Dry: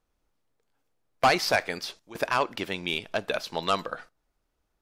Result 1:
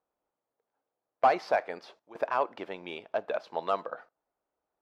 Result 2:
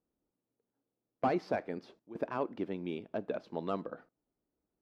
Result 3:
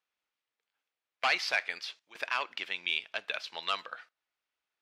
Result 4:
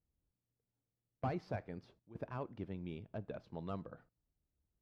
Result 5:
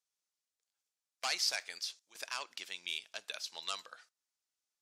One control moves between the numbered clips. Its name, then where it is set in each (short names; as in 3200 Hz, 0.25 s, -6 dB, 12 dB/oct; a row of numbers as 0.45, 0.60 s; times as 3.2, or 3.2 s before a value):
band-pass, frequency: 690, 270, 2600, 100, 6800 Hz